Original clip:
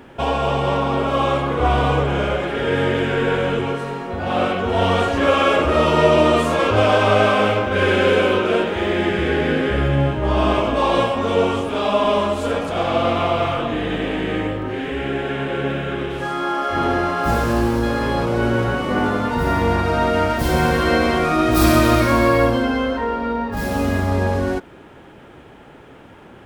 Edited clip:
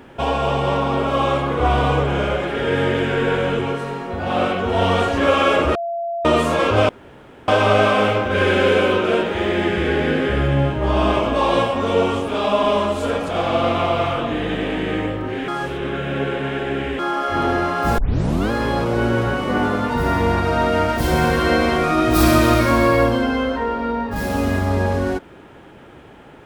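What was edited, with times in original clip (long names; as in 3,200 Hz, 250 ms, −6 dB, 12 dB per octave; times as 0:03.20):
0:05.75–0:06.25: beep over 682 Hz −21.5 dBFS
0:06.89: splice in room tone 0.59 s
0:14.89–0:16.40: reverse
0:17.39: tape start 0.53 s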